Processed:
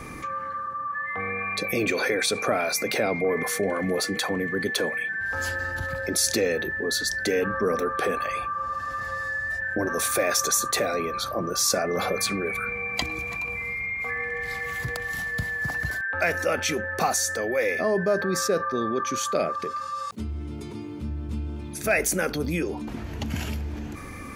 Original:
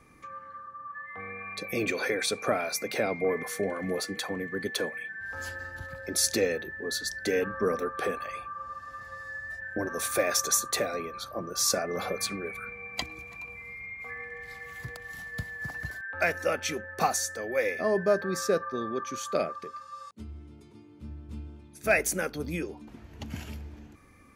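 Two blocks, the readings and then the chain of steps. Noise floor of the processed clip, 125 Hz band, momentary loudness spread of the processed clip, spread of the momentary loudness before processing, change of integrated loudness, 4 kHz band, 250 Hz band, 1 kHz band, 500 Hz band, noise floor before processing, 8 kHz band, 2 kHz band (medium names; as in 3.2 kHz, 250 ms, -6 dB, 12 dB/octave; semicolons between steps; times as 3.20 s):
-36 dBFS, +7.5 dB, 10 LU, 17 LU, +4.5 dB, +5.0 dB, +5.5 dB, +6.0 dB, +4.0 dB, -51 dBFS, +4.0 dB, +7.0 dB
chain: level flattener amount 50%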